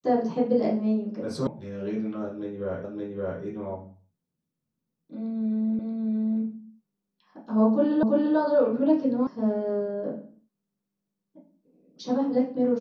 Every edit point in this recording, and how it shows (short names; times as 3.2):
1.47 sound cut off
2.84 repeat of the last 0.57 s
5.79 repeat of the last 0.63 s
8.03 repeat of the last 0.34 s
9.27 sound cut off